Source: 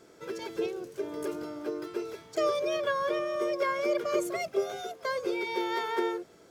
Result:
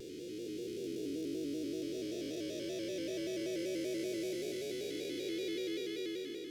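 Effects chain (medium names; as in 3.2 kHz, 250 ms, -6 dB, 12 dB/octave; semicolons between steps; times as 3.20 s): spectral blur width 1310 ms; Chebyshev band-stop 300–3200 Hz, order 2; vibrato with a chosen wave square 5.2 Hz, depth 100 cents; trim +4 dB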